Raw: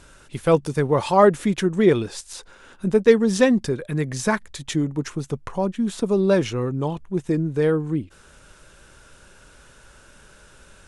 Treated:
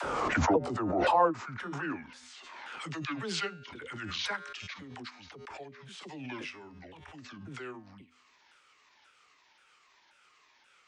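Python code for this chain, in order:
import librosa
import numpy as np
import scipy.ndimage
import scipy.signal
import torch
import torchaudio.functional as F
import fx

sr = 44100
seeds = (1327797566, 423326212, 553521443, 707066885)

y = fx.pitch_ramps(x, sr, semitones=-9.5, every_ms=532)
y = fx.comb_fb(y, sr, f0_hz=83.0, decay_s=0.64, harmonics='odd', damping=0.0, mix_pct=50)
y = fx.dispersion(y, sr, late='lows', ms=45.0, hz=430.0)
y = fx.filter_sweep_bandpass(y, sr, from_hz=710.0, to_hz=2400.0, start_s=0.57, end_s=2.88, q=1.2)
y = fx.pre_swell(y, sr, db_per_s=24.0)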